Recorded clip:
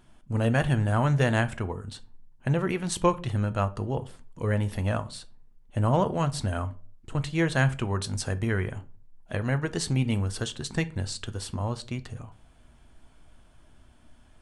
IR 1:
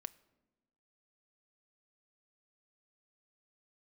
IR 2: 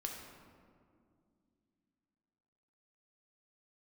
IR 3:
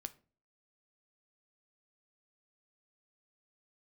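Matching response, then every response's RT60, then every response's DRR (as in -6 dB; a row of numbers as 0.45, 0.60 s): 3; 1.1 s, 2.3 s, not exponential; 15.5, 0.5, 11.5 dB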